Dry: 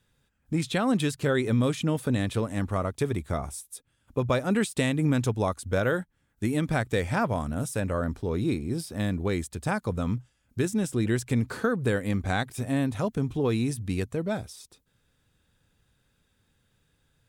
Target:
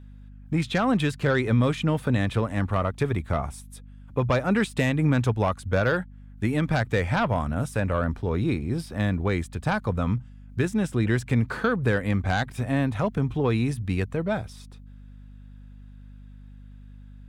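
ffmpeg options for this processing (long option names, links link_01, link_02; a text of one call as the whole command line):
ffmpeg -i in.wav -filter_complex "[0:a]bass=frequency=250:gain=8,treble=frequency=4000:gain=-13,acrossover=split=560[link_01][link_02];[link_02]aeval=exprs='0.168*sin(PI/2*2*val(0)/0.168)':channel_layout=same[link_03];[link_01][link_03]amix=inputs=2:normalize=0,aeval=exprs='val(0)+0.01*(sin(2*PI*50*n/s)+sin(2*PI*2*50*n/s)/2+sin(2*PI*3*50*n/s)/3+sin(2*PI*4*50*n/s)/4+sin(2*PI*5*50*n/s)/5)':channel_layout=same,volume=-3.5dB" out.wav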